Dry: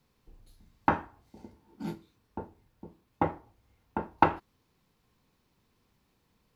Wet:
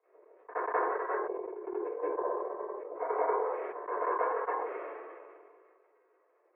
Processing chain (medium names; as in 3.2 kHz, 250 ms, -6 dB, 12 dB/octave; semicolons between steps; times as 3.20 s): time reversed locally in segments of 186 ms; granulator, grains 20 per s, pitch spread up and down by 0 st; reverse echo 189 ms -13.5 dB; transient shaper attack +3 dB, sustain -9 dB; compression 6:1, threshold -36 dBFS, peak gain reduction 16.5 dB; reverberation RT60 0.25 s, pre-delay 3 ms, DRR -2.5 dB; mistuned SSB +140 Hz 290–2000 Hz; decay stretcher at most 27 dB/s; trim -8 dB